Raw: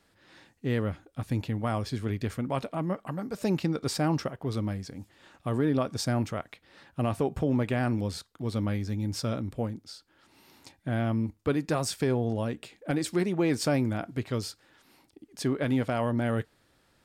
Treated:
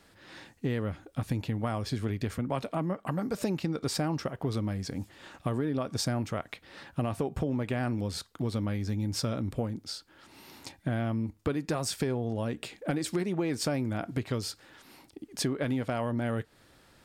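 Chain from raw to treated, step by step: compressor, threshold -34 dBFS, peak gain reduction 12 dB; 2.38–3.05 three-band expander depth 40%; gain +6.5 dB

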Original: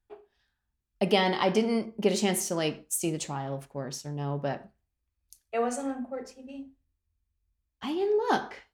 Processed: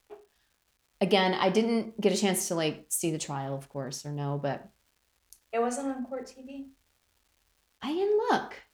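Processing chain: crackle 480/s -56 dBFS

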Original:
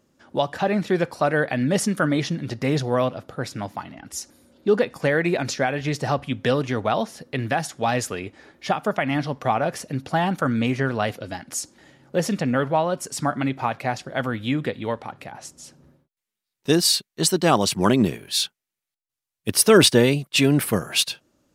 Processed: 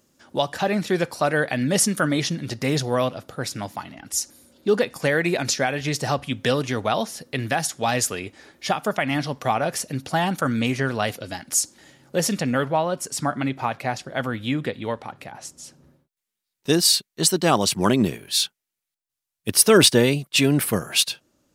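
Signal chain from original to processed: high shelf 3800 Hz +11 dB, from 12.65 s +4 dB; gain -1 dB

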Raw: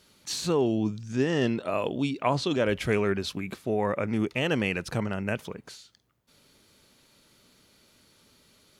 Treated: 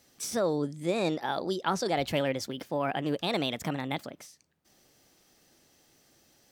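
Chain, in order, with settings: speed mistake 33 rpm record played at 45 rpm; gain -3 dB

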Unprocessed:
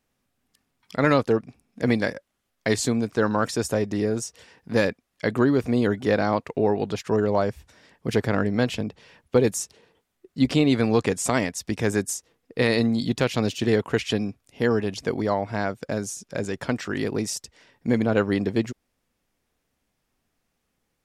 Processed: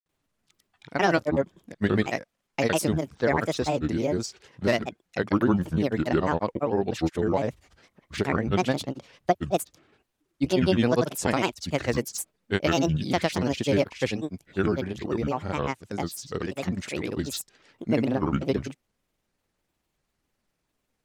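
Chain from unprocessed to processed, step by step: grains, pitch spread up and down by 7 st; gain -1 dB

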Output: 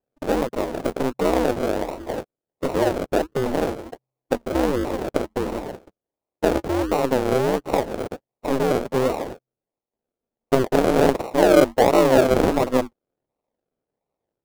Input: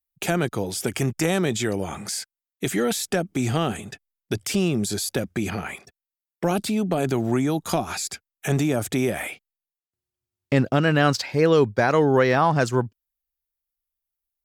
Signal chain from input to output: decimation with a swept rate 38×, swing 60% 1.4 Hz; ring modulator 130 Hz; bell 540 Hz +11 dB 2.2 oct; gain -2.5 dB

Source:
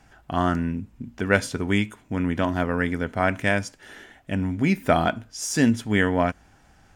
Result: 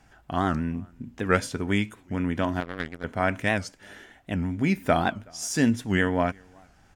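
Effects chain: outdoor echo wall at 64 m, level -29 dB; 2.6–3.04 power-law curve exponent 2; record warp 78 rpm, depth 160 cents; gain -2.5 dB

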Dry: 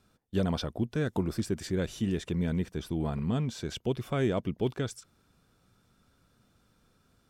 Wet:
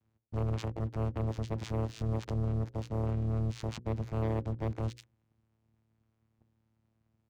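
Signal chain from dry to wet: vocoder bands 4, saw 111 Hz; dynamic EQ 240 Hz, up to -7 dB, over -50 dBFS, Q 6.9; sample leveller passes 3; compressor, threshold -29 dBFS, peak gain reduction 7 dB; limiter -28 dBFS, peak gain reduction 5 dB; harmoniser -7 st -9 dB; notches 60/120/180/240/300/360/420/480/540 Hz

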